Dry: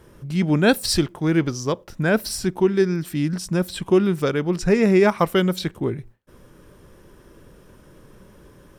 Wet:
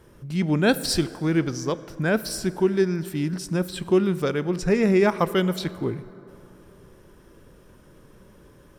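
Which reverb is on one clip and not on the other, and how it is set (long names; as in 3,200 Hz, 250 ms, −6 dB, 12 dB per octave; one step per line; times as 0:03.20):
dense smooth reverb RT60 3.3 s, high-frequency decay 0.45×, DRR 15.5 dB
level −3 dB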